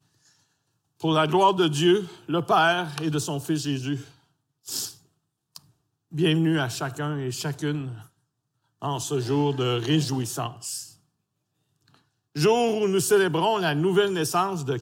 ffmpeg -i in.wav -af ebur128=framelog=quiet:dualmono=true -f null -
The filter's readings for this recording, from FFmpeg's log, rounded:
Integrated loudness:
  I:         -21.4 LUFS
  Threshold: -32.4 LUFS
Loudness range:
  LRA:         5.6 LU
  Threshold: -43.5 LUFS
  LRA low:   -26.0 LUFS
  LRA high:  -20.3 LUFS